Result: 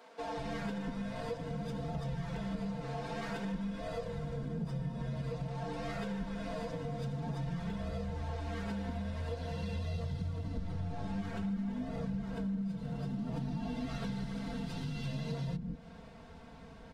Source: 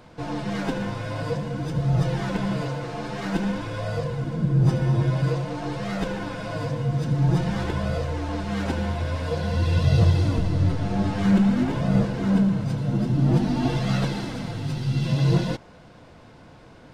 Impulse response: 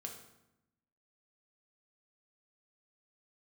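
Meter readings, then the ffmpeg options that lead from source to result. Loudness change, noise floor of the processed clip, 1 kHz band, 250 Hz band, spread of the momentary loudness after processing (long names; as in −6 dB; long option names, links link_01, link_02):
−14.5 dB, −52 dBFS, −11.5 dB, −13.5 dB, 2 LU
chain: -filter_complex "[0:a]equalizer=frequency=66:width=0.53:gain=7,aecho=1:1:4.4:0.83,acrossover=split=330[link_01][link_02];[link_01]adelay=190[link_03];[link_03][link_02]amix=inputs=2:normalize=0,asplit=2[link_04][link_05];[1:a]atrim=start_sample=2205,lowpass=4600[link_06];[link_05][link_06]afir=irnorm=-1:irlink=0,volume=-12.5dB[link_07];[link_04][link_07]amix=inputs=2:normalize=0,acompressor=threshold=-27dB:ratio=6,volume=-8dB"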